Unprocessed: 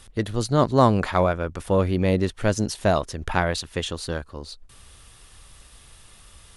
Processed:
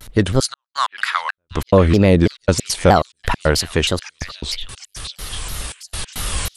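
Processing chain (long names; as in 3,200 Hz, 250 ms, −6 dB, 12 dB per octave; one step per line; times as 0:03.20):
camcorder AGC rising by 6.1 dB per second
0:00.40–0:01.38: elliptic band-pass filter 1,300–10,000 Hz, stop band 50 dB
in parallel at +2.5 dB: brickwall limiter −13.5 dBFS, peak gain reduction 7.5 dB
on the sum: gate pattern "xxxxx..x.xxx..x." 139 BPM −60 dB
echo through a band-pass that steps 750 ms, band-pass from 2,500 Hz, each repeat 0.7 octaves, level −8.5 dB
pitch modulation by a square or saw wave saw down 3.1 Hz, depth 250 cents
level +2.5 dB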